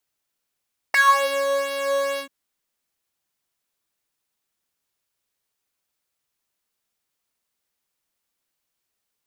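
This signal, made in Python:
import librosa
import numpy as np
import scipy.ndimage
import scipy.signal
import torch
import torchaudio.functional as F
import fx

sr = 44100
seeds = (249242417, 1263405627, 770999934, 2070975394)

y = fx.sub_patch_pwm(sr, seeds[0], note=73, wave2='saw', interval_st=0, detune_cents=16, level2_db=-17.0, sub_db=-18, noise_db=-30.0, kind='highpass', cutoff_hz=260.0, q=6.2, env_oct=3.0, env_decay_s=0.36, env_sustain_pct=25, attack_ms=3.6, decay_s=0.51, sustain_db=-7.0, release_s=0.09, note_s=1.25, lfo_hz=2.2, width_pct=15, width_swing_pct=8)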